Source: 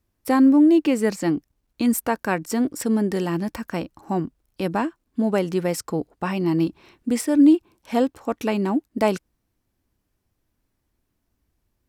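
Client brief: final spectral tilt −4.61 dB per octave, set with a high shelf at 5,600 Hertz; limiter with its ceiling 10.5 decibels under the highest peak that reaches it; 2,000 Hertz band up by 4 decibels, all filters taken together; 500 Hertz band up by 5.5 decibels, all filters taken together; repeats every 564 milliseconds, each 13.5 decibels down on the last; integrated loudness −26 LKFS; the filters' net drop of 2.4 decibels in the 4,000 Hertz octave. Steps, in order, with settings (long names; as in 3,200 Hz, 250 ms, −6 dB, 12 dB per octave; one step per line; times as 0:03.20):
parametric band 500 Hz +7 dB
parametric band 2,000 Hz +6 dB
parametric band 4,000 Hz −5 dB
high-shelf EQ 5,600 Hz −3.5 dB
brickwall limiter −14.5 dBFS
repeating echo 564 ms, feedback 21%, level −13.5 dB
level −1.5 dB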